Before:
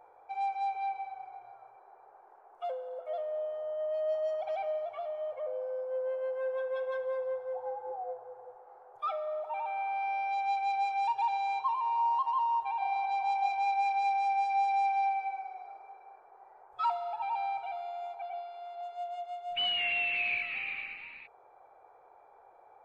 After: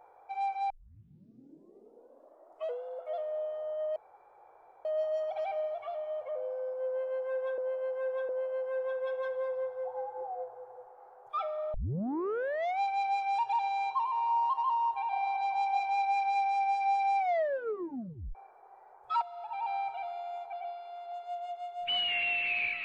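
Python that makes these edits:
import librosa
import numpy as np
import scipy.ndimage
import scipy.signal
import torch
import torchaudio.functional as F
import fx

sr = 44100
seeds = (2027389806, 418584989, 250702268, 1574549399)

y = fx.edit(x, sr, fx.tape_start(start_s=0.7, length_s=2.14),
    fx.insert_room_tone(at_s=3.96, length_s=0.89),
    fx.repeat(start_s=5.98, length_s=0.71, count=3),
    fx.tape_start(start_s=9.43, length_s=1.05),
    fx.tape_stop(start_s=14.88, length_s=1.16),
    fx.fade_in_from(start_s=16.91, length_s=0.52, floor_db=-12.0), tone=tone)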